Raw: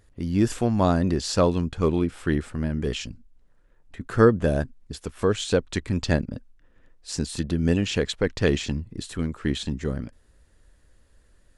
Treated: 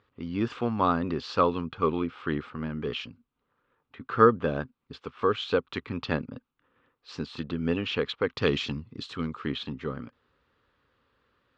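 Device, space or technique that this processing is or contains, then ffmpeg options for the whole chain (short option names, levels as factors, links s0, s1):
kitchen radio: -filter_complex "[0:a]highpass=180,equalizer=f=190:t=q:w=4:g=-9,equalizer=f=330:t=q:w=4:g=-7,equalizer=f=640:t=q:w=4:g=-10,equalizer=f=1200:t=q:w=4:g=8,equalizer=f=1800:t=q:w=4:g=-6,lowpass=f=3600:w=0.5412,lowpass=f=3600:w=1.3066,asettb=1/sr,asplit=3[s0][s1][s2];[s0]atrim=end=8.374[s3];[s1]atrim=start=8.37:end=9.46,asetpts=PTS-STARTPTS,afade=t=in:d=0.004:c=qsin,afade=t=out:st=1.086:d=0.004:c=qsin,bass=f=250:g=3,treble=f=4000:g=11[s4];[s2]atrim=start=9.456[s5];[s3][s4]acrossfade=d=0.004:c1=hsin:c2=qsin[s6];[s6][s5]acrossfade=d=0.004:c1=qsin:c2=hsin"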